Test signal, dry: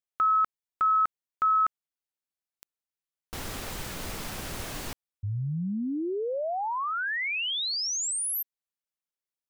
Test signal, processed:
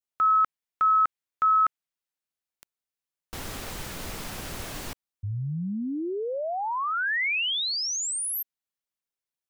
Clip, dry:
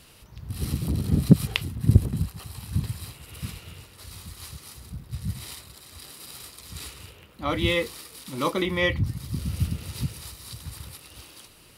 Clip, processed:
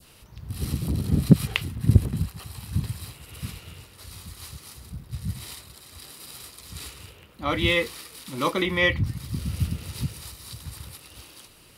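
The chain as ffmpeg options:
-filter_complex "[0:a]adynamicequalizer=threshold=0.0126:dfrequency=2100:dqfactor=0.77:tfrequency=2100:tqfactor=0.77:attack=5:release=100:ratio=0.375:range=2:mode=boostabove:tftype=bell,acrossover=split=820|3300[a][b][c];[c]asoftclip=type=hard:threshold=-25.5dB[d];[a][b][d]amix=inputs=3:normalize=0"

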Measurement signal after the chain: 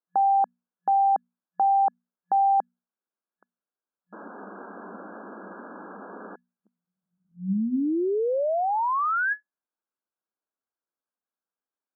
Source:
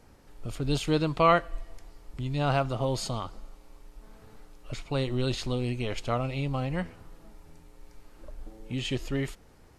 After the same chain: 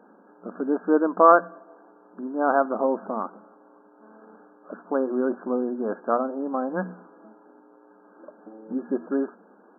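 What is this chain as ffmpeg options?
-af "afftfilt=real='re*between(b*sr/4096,180,1700)':imag='im*between(b*sr/4096,180,1700)':win_size=4096:overlap=0.75,bandreject=f=60:t=h:w=6,bandreject=f=120:t=h:w=6,bandreject=f=180:t=h:w=6,bandreject=f=240:t=h:w=6,volume=7dB"

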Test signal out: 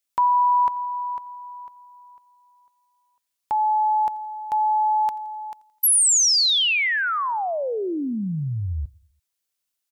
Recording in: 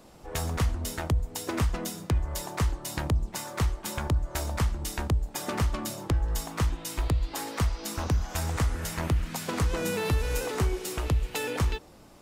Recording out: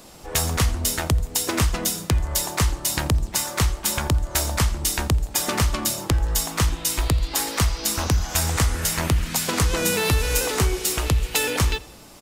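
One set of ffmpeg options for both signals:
-filter_complex "[0:a]highshelf=f=2.3k:g=9.5,asplit=2[a][b];[b]aecho=0:1:85|170|255|340:0.0708|0.0375|0.0199|0.0105[c];[a][c]amix=inputs=2:normalize=0,volume=5dB"

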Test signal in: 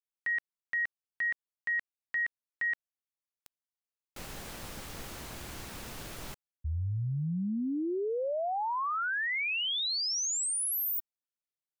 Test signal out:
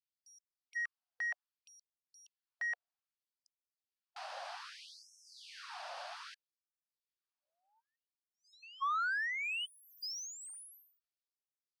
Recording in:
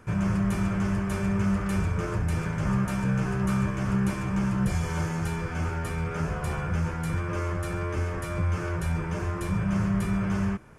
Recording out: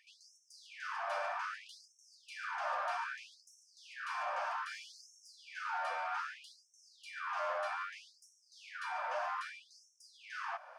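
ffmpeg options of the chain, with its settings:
-filter_complex "[0:a]highpass=360,equalizer=f=720:t=q:w=4:g=7,equalizer=f=2.1k:t=q:w=4:g=-6,equalizer=f=4.7k:t=q:w=4:g=6,equalizer=f=7.3k:t=q:w=4:g=-9,lowpass=f=8.5k:w=0.5412,lowpass=f=8.5k:w=1.3066,asplit=2[a][b];[b]highpass=f=720:p=1,volume=16dB,asoftclip=type=tanh:threshold=-21dB[c];[a][c]amix=inputs=2:normalize=0,lowpass=f=1.3k:p=1,volume=-6dB,afftfilt=real='re*gte(b*sr/1024,510*pow(5400/510,0.5+0.5*sin(2*PI*0.63*pts/sr)))':imag='im*gte(b*sr/1024,510*pow(5400/510,0.5+0.5*sin(2*PI*0.63*pts/sr)))':win_size=1024:overlap=0.75,volume=-4dB"

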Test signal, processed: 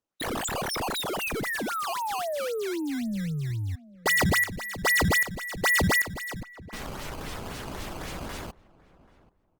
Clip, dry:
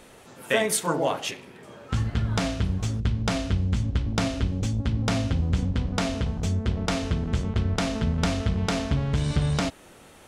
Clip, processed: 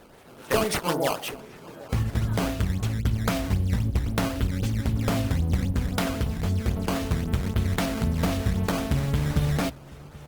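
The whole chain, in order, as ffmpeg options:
-filter_complex "[0:a]acrusher=samples=14:mix=1:aa=0.000001:lfo=1:lforange=22.4:lforate=3.8,asplit=2[a][b];[b]adelay=784,lowpass=f=1.3k:p=1,volume=-20.5dB,asplit=2[c][d];[d]adelay=784,lowpass=f=1.3k:p=1,volume=0.25[e];[a][c][e]amix=inputs=3:normalize=0" -ar 48000 -c:a libopus -b:a 32k

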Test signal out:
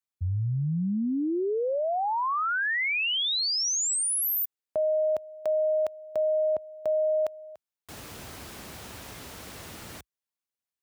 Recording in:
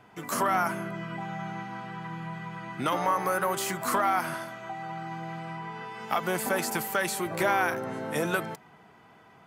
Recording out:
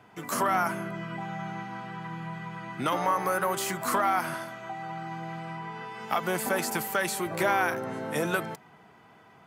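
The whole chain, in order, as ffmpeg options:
-af "highpass=f=53:w=0.5412,highpass=f=53:w=1.3066"

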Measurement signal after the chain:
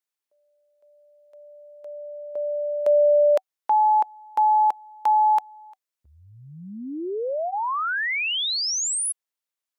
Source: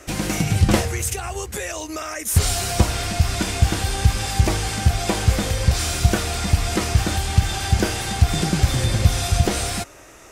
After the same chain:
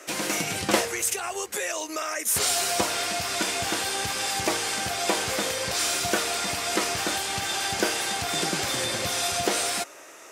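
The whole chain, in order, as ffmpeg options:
-af "highpass=390,bandreject=f=760:w=20"

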